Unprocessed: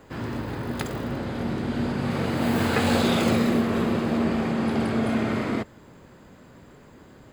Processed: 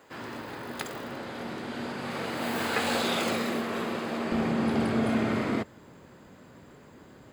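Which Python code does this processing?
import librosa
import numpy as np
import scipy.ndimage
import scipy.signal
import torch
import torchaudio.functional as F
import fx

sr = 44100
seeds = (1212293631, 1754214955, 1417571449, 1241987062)

y = fx.highpass(x, sr, hz=fx.steps((0.0, 610.0), (4.32, 86.0)), slope=6)
y = y * 10.0 ** (-1.5 / 20.0)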